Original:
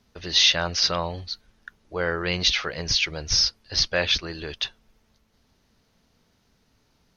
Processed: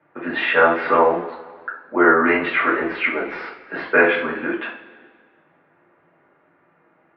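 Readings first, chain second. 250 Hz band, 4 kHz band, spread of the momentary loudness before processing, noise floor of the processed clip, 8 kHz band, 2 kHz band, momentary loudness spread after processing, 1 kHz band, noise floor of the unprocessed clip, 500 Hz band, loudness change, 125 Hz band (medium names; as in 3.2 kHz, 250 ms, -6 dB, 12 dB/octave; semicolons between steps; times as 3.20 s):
+13.0 dB, -15.0 dB, 15 LU, -60 dBFS, under -40 dB, +10.0 dB, 17 LU, +14.0 dB, -67 dBFS, +11.5 dB, +4.0 dB, -7.0 dB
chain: mistuned SSB -99 Hz 350–2100 Hz; two-slope reverb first 0.35 s, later 1.7 s, from -17 dB, DRR -6 dB; trim +7 dB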